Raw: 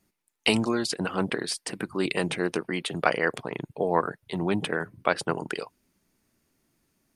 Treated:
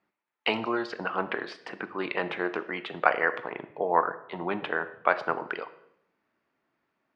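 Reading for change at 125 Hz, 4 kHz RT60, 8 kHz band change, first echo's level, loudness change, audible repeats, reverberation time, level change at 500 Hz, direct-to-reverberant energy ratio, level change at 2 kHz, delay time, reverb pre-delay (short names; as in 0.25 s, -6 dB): -11.5 dB, 0.65 s, under -25 dB, none, -1.5 dB, none, 0.75 s, -2.0 dB, 11.0 dB, +1.0 dB, none, 14 ms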